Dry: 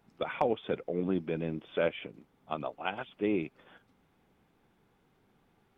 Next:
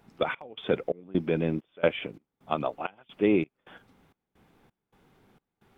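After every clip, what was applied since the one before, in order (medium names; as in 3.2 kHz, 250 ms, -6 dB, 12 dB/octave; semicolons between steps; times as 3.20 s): trance gate "xxx..xxx..x" 131 bpm -24 dB; trim +7 dB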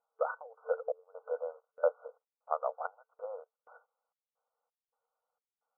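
FFT band-pass 450–1500 Hz; gate -59 dBFS, range -16 dB; trim -3.5 dB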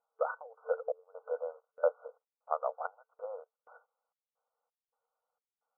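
no audible change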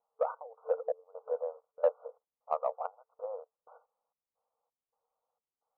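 steep low-pass 1.2 kHz 48 dB/octave; in parallel at -11 dB: saturation -26 dBFS, distortion -11 dB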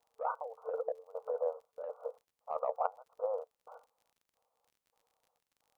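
crackle 39 per s -60 dBFS; compressor with a negative ratio -34 dBFS, ratio -1; trim +1 dB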